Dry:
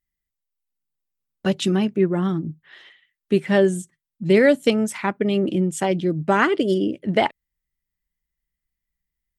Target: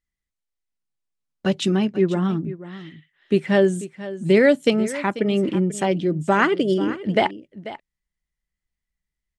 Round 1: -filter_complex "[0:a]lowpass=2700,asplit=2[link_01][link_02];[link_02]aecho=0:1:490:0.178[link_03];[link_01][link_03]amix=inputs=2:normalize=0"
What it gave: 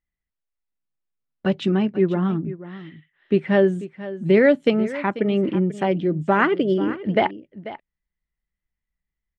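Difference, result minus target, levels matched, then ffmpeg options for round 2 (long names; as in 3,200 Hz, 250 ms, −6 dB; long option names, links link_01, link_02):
8,000 Hz band −17.5 dB
-filter_complex "[0:a]lowpass=9000,asplit=2[link_01][link_02];[link_02]aecho=0:1:490:0.178[link_03];[link_01][link_03]amix=inputs=2:normalize=0"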